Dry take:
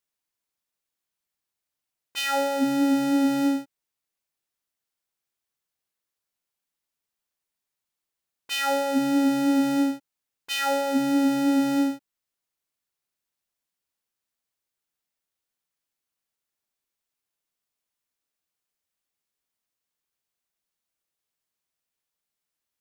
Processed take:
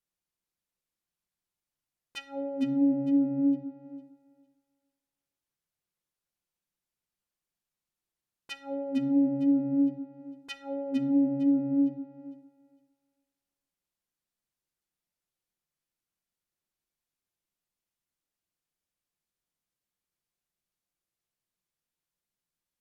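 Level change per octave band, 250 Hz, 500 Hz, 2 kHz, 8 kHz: −3.0 dB, −8.0 dB, −16.5 dB, below −20 dB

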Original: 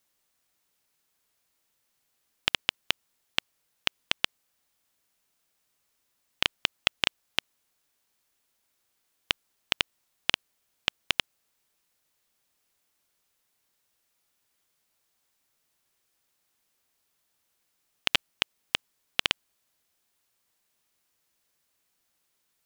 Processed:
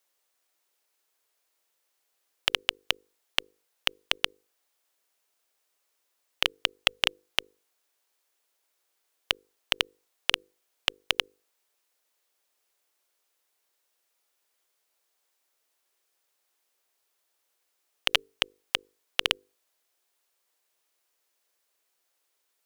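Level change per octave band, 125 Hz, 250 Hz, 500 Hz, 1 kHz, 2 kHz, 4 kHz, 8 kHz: −3.0, −5.0, +3.5, +1.0, +0.5, +1.5, +1.5 decibels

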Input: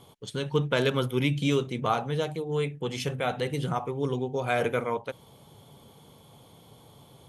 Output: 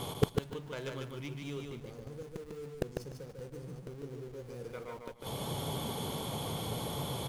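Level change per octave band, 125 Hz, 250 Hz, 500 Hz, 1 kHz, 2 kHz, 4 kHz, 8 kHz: −8.0, −9.5, −10.5, −11.0, −14.5, −6.0, −0.5 decibels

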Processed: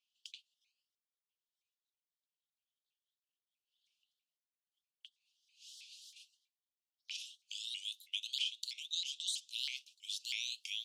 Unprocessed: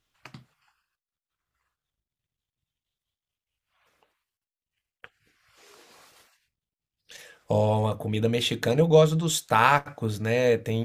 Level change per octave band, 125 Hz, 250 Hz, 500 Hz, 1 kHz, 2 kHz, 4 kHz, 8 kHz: below −40 dB, below −40 dB, below −40 dB, below −40 dB, −18.0 dB, −3.0 dB, −9.5 dB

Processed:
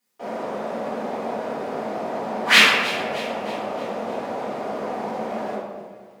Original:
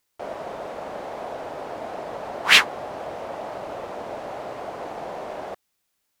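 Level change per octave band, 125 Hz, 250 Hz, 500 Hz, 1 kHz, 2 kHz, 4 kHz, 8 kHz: +5.5, +10.5, +5.0, +4.5, +3.5, +2.0, +1.0 decibels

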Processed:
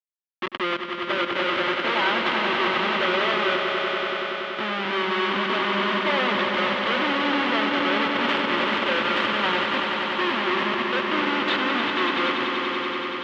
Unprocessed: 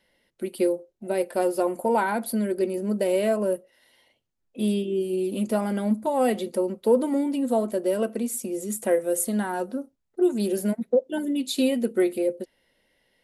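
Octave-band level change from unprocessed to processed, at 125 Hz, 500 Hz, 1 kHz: can't be measured, −3.0 dB, +8.5 dB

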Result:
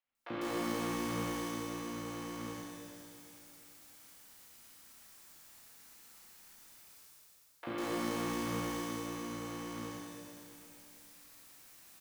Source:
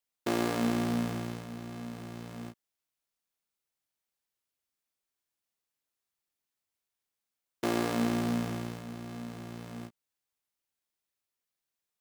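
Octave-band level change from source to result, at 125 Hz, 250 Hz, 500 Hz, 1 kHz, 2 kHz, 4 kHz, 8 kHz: −7.0, −5.5, −4.0, −1.5, −2.0, −1.5, +1.5 decibels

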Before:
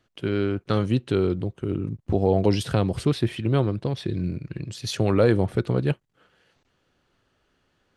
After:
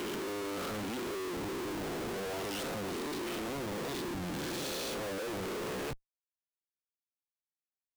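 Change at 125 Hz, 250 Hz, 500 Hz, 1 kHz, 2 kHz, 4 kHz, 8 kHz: −22.0, −13.0, −12.5, −6.5, −4.0, −5.0, −0.5 decibels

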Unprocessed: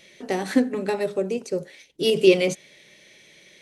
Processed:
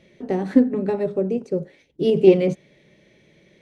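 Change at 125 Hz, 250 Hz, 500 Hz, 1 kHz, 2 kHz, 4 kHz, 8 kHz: +7.0 dB, +4.5 dB, +2.5 dB, −1.5 dB, −8.5 dB, −10.5 dB, below −15 dB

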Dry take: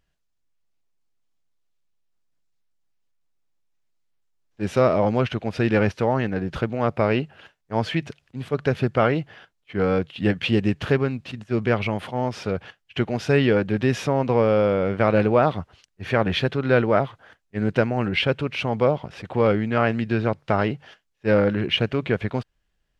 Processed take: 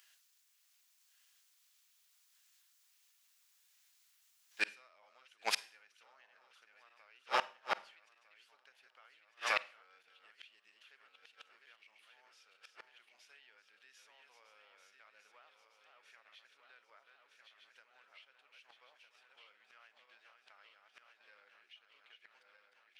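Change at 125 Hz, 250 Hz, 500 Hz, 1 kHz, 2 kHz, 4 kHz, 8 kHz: below −40 dB, below −40 dB, −32.5 dB, −18.5 dB, −16.0 dB, −16.0 dB, can't be measured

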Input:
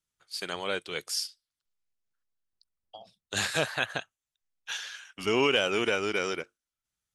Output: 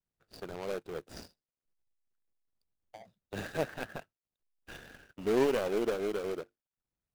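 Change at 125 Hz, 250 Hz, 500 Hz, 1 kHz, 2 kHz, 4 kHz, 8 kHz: −3.5, −1.5, −1.5, −6.5, −13.0, −17.0, −14.5 decibels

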